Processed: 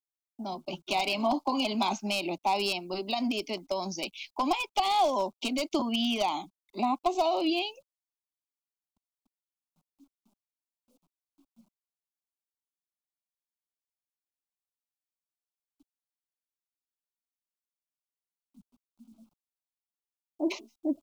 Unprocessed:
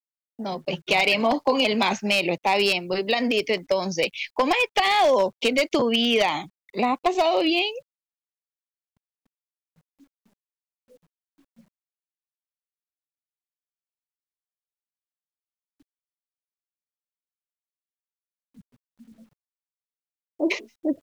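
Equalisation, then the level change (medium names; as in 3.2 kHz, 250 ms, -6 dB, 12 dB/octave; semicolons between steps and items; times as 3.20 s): static phaser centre 480 Hz, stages 6; -4.0 dB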